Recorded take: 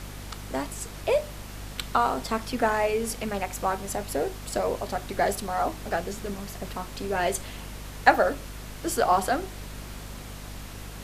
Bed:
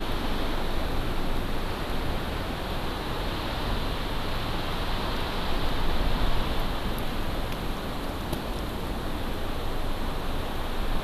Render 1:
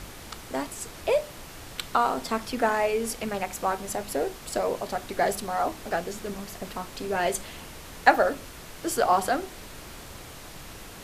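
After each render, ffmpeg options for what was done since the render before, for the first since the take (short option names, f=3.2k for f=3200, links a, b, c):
-af "bandreject=f=50:t=h:w=4,bandreject=f=100:t=h:w=4,bandreject=f=150:t=h:w=4,bandreject=f=200:t=h:w=4,bandreject=f=250:t=h:w=4"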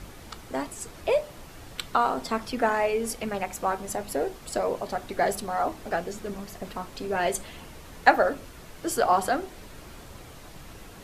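-af "afftdn=nr=6:nf=-44"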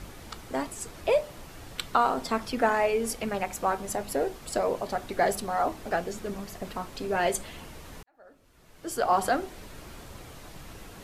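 -filter_complex "[0:a]asplit=2[a][b];[a]atrim=end=8.03,asetpts=PTS-STARTPTS,afade=t=out:st=8.026:d=0.004:c=hsin[c];[b]atrim=start=8.03,asetpts=PTS-STARTPTS,afade=t=in:d=1.22:c=qua[d];[c][d]concat=n=2:v=0:a=1"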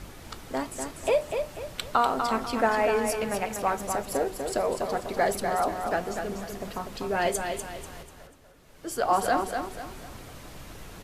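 -af "aecho=1:1:245|490|735|980:0.501|0.185|0.0686|0.0254"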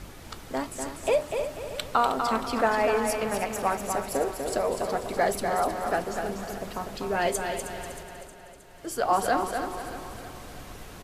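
-af "aecho=1:1:314|628|942|1256|1570|1884:0.266|0.152|0.0864|0.0493|0.0281|0.016"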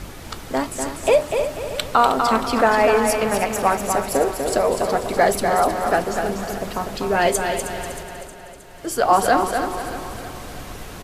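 -af "volume=8dB,alimiter=limit=-3dB:level=0:latency=1"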